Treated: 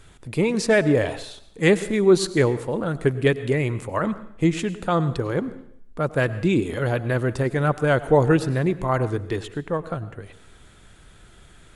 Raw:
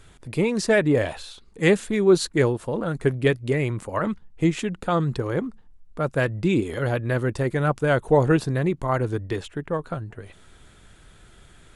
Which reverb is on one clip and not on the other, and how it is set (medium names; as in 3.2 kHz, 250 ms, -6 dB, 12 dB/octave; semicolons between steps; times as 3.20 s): plate-style reverb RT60 0.69 s, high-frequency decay 0.95×, pre-delay 85 ms, DRR 15 dB; trim +1 dB